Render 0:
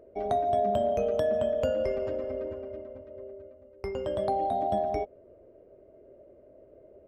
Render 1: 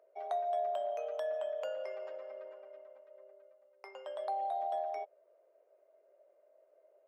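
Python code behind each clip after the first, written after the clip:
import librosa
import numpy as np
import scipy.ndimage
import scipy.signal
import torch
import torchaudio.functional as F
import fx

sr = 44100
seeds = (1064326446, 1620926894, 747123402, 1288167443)

y = scipy.signal.sosfilt(scipy.signal.butter(4, 650.0, 'highpass', fs=sr, output='sos'), x)
y = fx.high_shelf(y, sr, hz=3600.0, db=-6.5)
y = y * librosa.db_to_amplitude(-5.0)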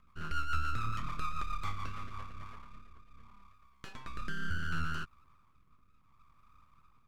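y = np.abs(x)
y = fx.rotary_switch(y, sr, hz=7.0, then_hz=0.7, switch_at_s=1.75)
y = y * librosa.db_to_amplitude(6.5)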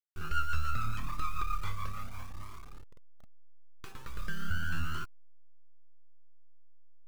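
y = fx.delta_hold(x, sr, step_db=-48.5)
y = fx.comb_cascade(y, sr, direction='rising', hz=0.81)
y = y * librosa.db_to_amplitude(5.0)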